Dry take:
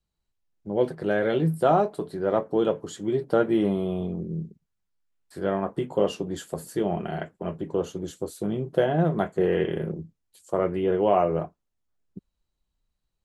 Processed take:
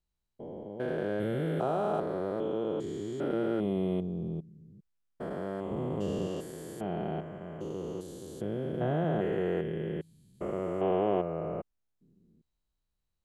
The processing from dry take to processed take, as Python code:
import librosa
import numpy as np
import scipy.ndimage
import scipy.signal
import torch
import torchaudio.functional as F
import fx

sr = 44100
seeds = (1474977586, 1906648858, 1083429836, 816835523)

y = fx.spec_steps(x, sr, hold_ms=400)
y = fx.low_shelf(y, sr, hz=190.0, db=11.5, at=(5.71, 6.27))
y = y * librosa.db_to_amplitude(-3.5)